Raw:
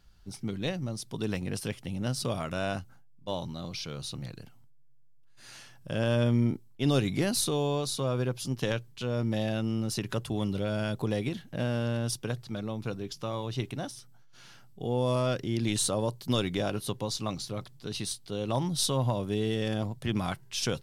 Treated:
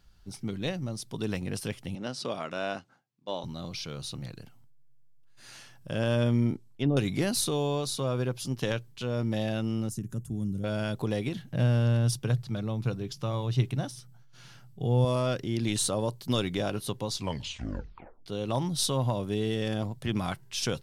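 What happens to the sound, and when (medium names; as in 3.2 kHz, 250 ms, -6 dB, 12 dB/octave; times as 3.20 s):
1.95–3.44 s: band-pass 250–5800 Hz
6.53–6.97 s: low-pass that closes with the level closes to 620 Hz, closed at -21 dBFS
9.89–10.64 s: FFT filter 220 Hz 0 dB, 550 Hz -16 dB, 990 Hz -20 dB, 1.6 kHz -16 dB, 2.3 kHz -23 dB, 4.4 kHz -21 dB, 6.8 kHz -3 dB
11.36–15.05 s: peaking EQ 130 Hz +10 dB 0.67 oct
17.12 s: tape stop 1.14 s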